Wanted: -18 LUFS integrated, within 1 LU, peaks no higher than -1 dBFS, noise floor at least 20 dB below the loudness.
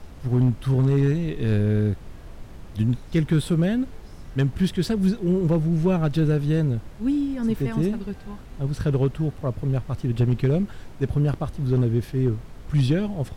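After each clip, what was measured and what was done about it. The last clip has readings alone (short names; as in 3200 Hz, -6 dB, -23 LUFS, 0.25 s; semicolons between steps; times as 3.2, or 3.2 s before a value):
clipped 0.5%; flat tops at -12.5 dBFS; noise floor -42 dBFS; noise floor target -44 dBFS; loudness -23.5 LUFS; peak -12.5 dBFS; loudness target -18.0 LUFS
-> clip repair -12.5 dBFS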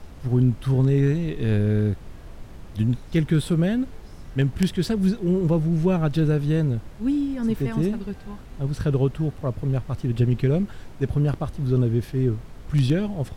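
clipped 0.0%; noise floor -42 dBFS; noise floor target -44 dBFS
-> noise print and reduce 6 dB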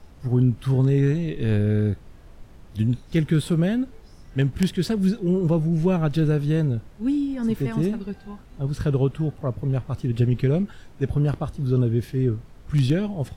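noise floor -47 dBFS; loudness -23.5 LUFS; peak -3.5 dBFS; loudness target -18.0 LUFS
-> gain +5.5 dB; limiter -1 dBFS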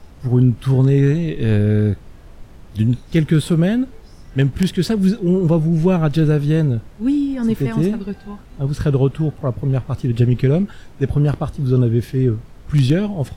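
loudness -18.0 LUFS; peak -1.0 dBFS; noise floor -41 dBFS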